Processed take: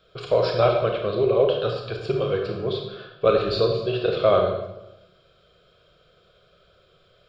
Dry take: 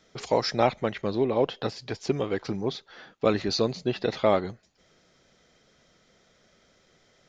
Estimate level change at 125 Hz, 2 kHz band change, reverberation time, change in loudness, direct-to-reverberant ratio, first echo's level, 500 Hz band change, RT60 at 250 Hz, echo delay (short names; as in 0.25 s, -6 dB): +5.0 dB, +2.0 dB, 0.95 s, +4.5 dB, 1.5 dB, none, +6.5 dB, 1.1 s, none